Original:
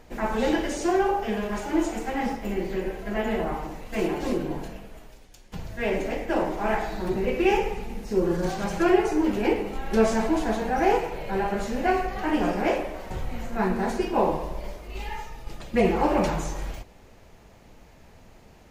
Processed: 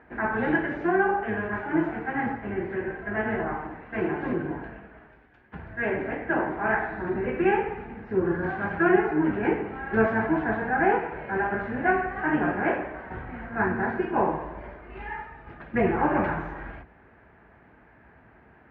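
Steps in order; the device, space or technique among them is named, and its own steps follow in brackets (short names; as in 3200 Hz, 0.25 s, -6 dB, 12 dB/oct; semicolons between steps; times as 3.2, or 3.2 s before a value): sub-octave bass pedal (octaver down 1 oct, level -6 dB; speaker cabinet 60–2100 Hz, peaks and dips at 86 Hz -9 dB, 130 Hz -5 dB, 190 Hz -4 dB, 530 Hz -7 dB, 1600 Hz +10 dB)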